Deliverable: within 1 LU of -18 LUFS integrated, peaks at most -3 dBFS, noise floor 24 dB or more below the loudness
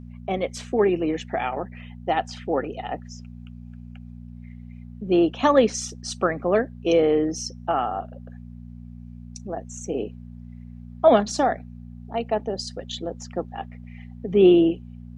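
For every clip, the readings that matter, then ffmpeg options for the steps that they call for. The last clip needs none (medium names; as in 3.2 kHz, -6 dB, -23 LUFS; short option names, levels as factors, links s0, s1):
hum 60 Hz; highest harmonic 240 Hz; hum level -37 dBFS; loudness -23.5 LUFS; peak level -4.0 dBFS; loudness target -18.0 LUFS
-> -af "bandreject=f=60:t=h:w=4,bandreject=f=120:t=h:w=4,bandreject=f=180:t=h:w=4,bandreject=f=240:t=h:w=4"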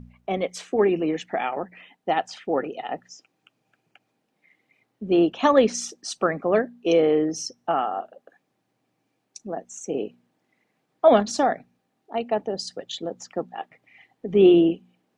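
hum not found; loudness -23.5 LUFS; peak level -4.5 dBFS; loudness target -18.0 LUFS
-> -af "volume=1.88,alimiter=limit=0.708:level=0:latency=1"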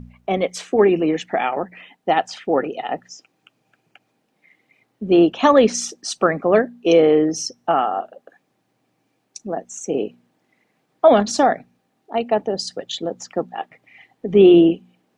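loudness -18.5 LUFS; peak level -3.0 dBFS; noise floor -69 dBFS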